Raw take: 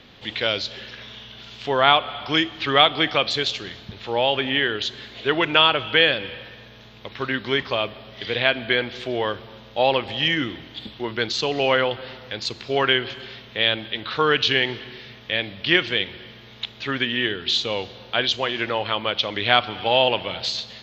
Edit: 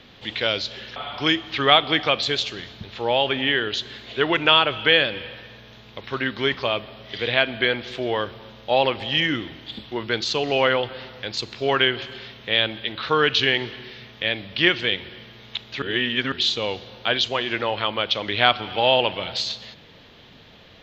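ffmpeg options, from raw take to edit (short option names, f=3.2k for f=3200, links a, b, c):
-filter_complex "[0:a]asplit=4[a][b][c][d];[a]atrim=end=0.962[e];[b]atrim=start=2.038:end=16.902[f];[c]atrim=start=16.898:end=17.402,asetpts=PTS-STARTPTS,areverse[g];[d]atrim=start=17.398[h];[e][f]acrossfade=d=0.004:c1=hsin:c2=hsin[i];[i][g]acrossfade=d=0.004:c1=hsin:c2=hsin[j];[j][h]acrossfade=d=0.004:c1=hsin:c2=hsin"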